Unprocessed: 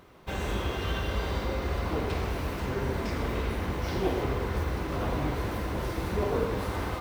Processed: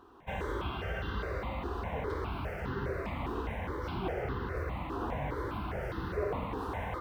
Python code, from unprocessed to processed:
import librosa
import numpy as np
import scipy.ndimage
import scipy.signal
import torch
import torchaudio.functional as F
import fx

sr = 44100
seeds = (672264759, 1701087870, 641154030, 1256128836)

p1 = fx.bass_treble(x, sr, bass_db=3, treble_db=-14)
p2 = fx.rider(p1, sr, range_db=4, speed_s=0.5)
p3 = p1 + F.gain(torch.from_numpy(p2), -0.5).numpy()
p4 = fx.low_shelf(p3, sr, hz=140.0, db=-11.0)
p5 = fx.phaser_held(p4, sr, hz=4.9, low_hz=580.0, high_hz=2300.0)
y = F.gain(torch.from_numpy(p5), -6.0).numpy()